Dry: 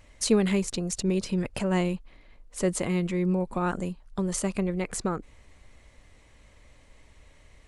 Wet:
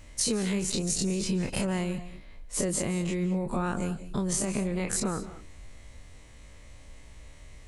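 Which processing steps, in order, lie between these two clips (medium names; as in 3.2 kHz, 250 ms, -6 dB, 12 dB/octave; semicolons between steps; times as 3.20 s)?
every event in the spectrogram widened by 60 ms; tone controls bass +4 dB, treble +5 dB; compression, threshold -24 dBFS, peak gain reduction 10.5 dB; on a send: reverberation, pre-delay 138 ms, DRR 12.5 dB; on the sum: trim -1.5 dB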